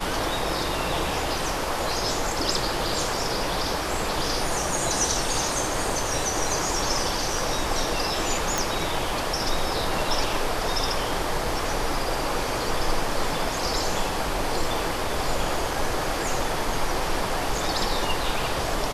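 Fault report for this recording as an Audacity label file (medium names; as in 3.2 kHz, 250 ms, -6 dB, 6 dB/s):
8.580000	8.580000	pop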